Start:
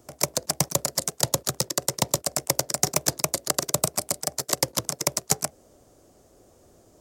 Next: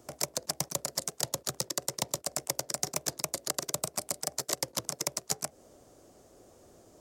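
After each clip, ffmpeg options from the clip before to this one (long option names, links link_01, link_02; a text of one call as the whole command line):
ffmpeg -i in.wav -af "lowshelf=frequency=130:gain=-5.5,acompressor=threshold=-27dB:ratio=6,highshelf=frequency=11000:gain=-4" out.wav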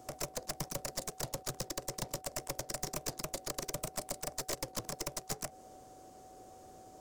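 ffmpeg -i in.wav -af "aeval=exprs='val(0)+0.00178*sin(2*PI*750*n/s)':channel_layout=same,aeval=exprs='(tanh(44.7*val(0)+0.5)-tanh(0.5))/44.7':channel_layout=same,volume=2.5dB" out.wav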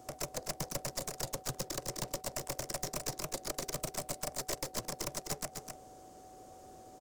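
ffmpeg -i in.wav -af "aecho=1:1:257:0.501" out.wav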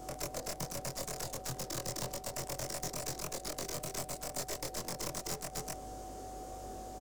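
ffmpeg -i in.wav -filter_complex "[0:a]aeval=exprs='val(0)+0.001*(sin(2*PI*50*n/s)+sin(2*PI*2*50*n/s)/2+sin(2*PI*3*50*n/s)/3+sin(2*PI*4*50*n/s)/4+sin(2*PI*5*50*n/s)/5)':channel_layout=same,alimiter=level_in=11.5dB:limit=-24dB:level=0:latency=1:release=106,volume=-11.5dB,asplit=2[link_01][link_02];[link_02]adelay=23,volume=-2dB[link_03];[link_01][link_03]amix=inputs=2:normalize=0,volume=5.5dB" out.wav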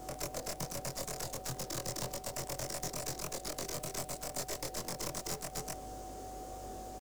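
ffmpeg -i in.wav -af "acrusher=bits=9:mix=0:aa=0.000001" out.wav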